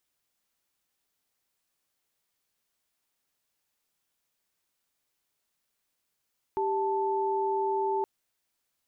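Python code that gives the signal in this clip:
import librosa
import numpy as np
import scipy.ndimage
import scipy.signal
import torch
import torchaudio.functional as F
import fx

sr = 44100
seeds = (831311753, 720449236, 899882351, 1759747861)

y = fx.chord(sr, length_s=1.47, notes=(67, 81), wave='sine', level_db=-28.0)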